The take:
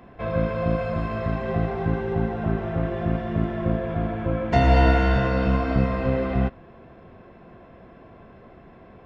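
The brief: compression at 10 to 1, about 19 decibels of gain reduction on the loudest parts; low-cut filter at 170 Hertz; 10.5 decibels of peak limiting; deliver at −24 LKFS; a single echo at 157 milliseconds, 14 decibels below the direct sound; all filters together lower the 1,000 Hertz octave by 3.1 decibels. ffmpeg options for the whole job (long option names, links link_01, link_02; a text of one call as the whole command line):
ffmpeg -i in.wav -af "highpass=170,equalizer=frequency=1000:width_type=o:gain=-5,acompressor=threshold=-38dB:ratio=10,alimiter=level_in=13.5dB:limit=-24dB:level=0:latency=1,volume=-13.5dB,aecho=1:1:157:0.2,volume=23dB" out.wav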